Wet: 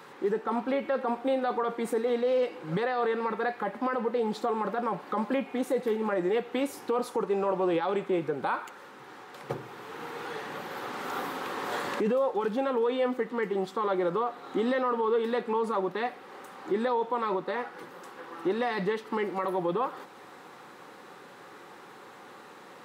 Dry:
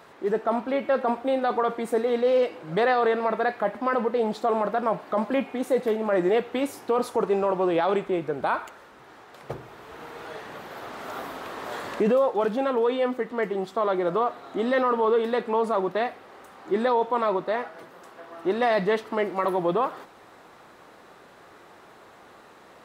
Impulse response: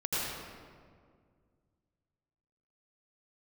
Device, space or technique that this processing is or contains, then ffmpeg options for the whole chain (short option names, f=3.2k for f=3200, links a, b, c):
PA system with an anti-feedback notch: -af "highpass=f=120:w=0.5412,highpass=f=120:w=1.3066,asuperstop=centerf=650:order=12:qfactor=6.1,alimiter=limit=-21.5dB:level=0:latency=1:release=335,volume=2dB"